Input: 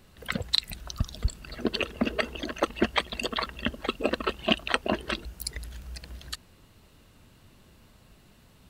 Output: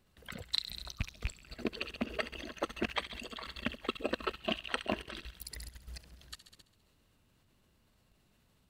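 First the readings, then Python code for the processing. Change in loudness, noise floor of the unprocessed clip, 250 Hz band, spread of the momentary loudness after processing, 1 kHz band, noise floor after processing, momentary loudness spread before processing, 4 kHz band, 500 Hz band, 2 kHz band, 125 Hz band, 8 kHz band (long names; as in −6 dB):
−8.5 dB, −58 dBFS, −9.0 dB, 14 LU, −9.0 dB, −71 dBFS, 14 LU, −8.5 dB, −8.5 dB, −8.5 dB, −9.5 dB, −8.5 dB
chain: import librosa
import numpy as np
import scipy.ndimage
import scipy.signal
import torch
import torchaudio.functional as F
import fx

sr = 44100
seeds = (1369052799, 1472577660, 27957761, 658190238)

y = fx.rattle_buzz(x, sr, strikes_db=-24.0, level_db=-15.0)
y = fx.echo_wet_highpass(y, sr, ms=67, feedback_pct=66, hz=2000.0, wet_db=-7.5)
y = fx.level_steps(y, sr, step_db=13)
y = y * 10.0 ** (-5.0 / 20.0)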